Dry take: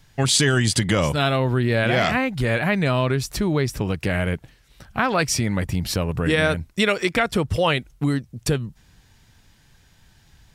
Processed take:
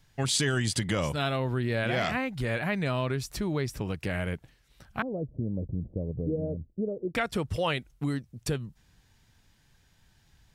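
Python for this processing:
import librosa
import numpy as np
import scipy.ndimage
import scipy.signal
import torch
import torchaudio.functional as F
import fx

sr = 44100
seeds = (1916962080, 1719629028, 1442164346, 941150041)

y = fx.steep_lowpass(x, sr, hz=570.0, slope=36, at=(5.02, 7.15))
y = F.gain(torch.from_numpy(y), -8.5).numpy()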